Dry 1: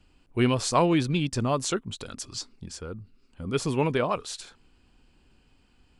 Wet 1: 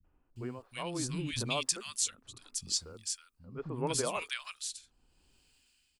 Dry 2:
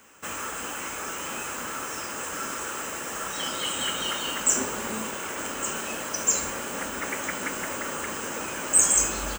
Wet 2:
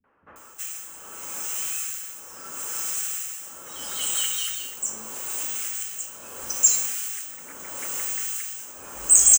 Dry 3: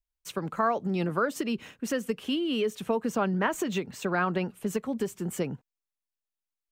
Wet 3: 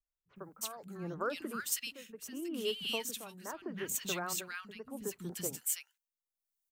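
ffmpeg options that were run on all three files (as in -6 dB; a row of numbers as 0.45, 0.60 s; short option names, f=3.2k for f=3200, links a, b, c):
-filter_complex "[0:a]tremolo=f=0.77:d=0.82,acrossover=split=220|1500[a][b][c];[b]adelay=40[d];[c]adelay=360[e];[a][d][e]amix=inputs=3:normalize=0,crystalizer=i=5.5:c=0,volume=-8dB"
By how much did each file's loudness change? -8.5, +2.0, -8.0 LU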